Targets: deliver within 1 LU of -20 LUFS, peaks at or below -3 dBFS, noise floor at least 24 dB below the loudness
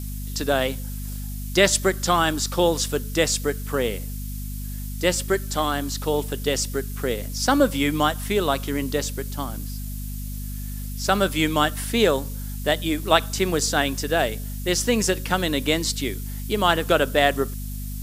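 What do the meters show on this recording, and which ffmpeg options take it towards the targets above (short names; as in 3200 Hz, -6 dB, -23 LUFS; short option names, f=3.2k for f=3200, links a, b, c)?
hum 50 Hz; harmonics up to 250 Hz; hum level -29 dBFS; noise floor -31 dBFS; noise floor target -48 dBFS; loudness -23.5 LUFS; peak -1.5 dBFS; loudness target -20.0 LUFS
-> -af "bandreject=f=50:t=h:w=4,bandreject=f=100:t=h:w=4,bandreject=f=150:t=h:w=4,bandreject=f=200:t=h:w=4,bandreject=f=250:t=h:w=4"
-af "afftdn=nr=17:nf=-31"
-af "volume=3.5dB,alimiter=limit=-3dB:level=0:latency=1"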